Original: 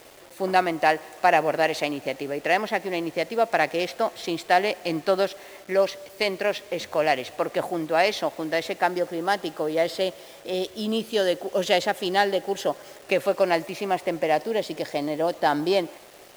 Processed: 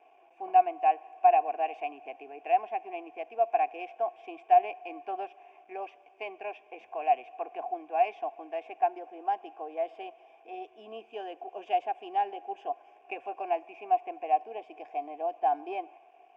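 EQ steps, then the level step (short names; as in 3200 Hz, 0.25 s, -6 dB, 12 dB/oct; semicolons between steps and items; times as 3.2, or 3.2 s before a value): vowel filter a; air absorption 110 m; fixed phaser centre 840 Hz, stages 8; +3.0 dB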